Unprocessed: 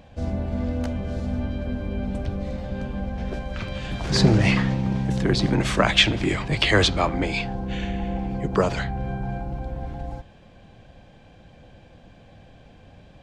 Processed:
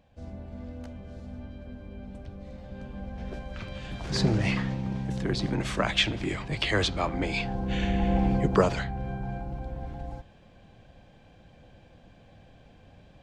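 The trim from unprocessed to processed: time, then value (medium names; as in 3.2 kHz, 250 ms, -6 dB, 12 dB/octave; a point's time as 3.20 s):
2.34 s -14 dB
3.27 s -7.5 dB
6.90 s -7.5 dB
8.28 s +4.5 dB
8.85 s -5 dB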